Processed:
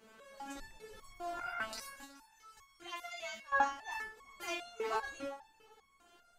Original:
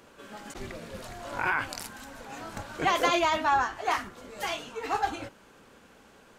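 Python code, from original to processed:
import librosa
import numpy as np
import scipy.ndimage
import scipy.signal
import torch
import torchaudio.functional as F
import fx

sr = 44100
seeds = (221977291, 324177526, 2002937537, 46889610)

y = fx.tone_stack(x, sr, knobs='5-5-5', at=(2.04, 3.52))
y = fx.echo_feedback(y, sr, ms=376, feedback_pct=39, wet_db=-19)
y = fx.resonator_held(y, sr, hz=5.0, low_hz=220.0, high_hz=1100.0)
y = F.gain(torch.from_numpy(y), 7.5).numpy()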